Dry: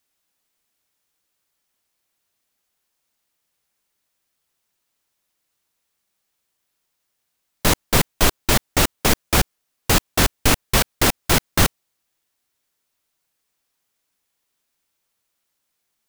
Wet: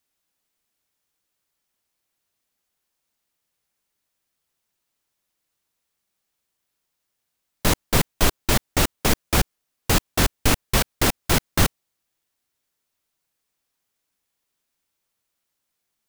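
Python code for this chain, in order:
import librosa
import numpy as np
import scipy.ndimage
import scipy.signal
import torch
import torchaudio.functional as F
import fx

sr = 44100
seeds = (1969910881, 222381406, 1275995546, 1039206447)

y = fx.low_shelf(x, sr, hz=370.0, db=2.5)
y = y * librosa.db_to_amplitude(-3.5)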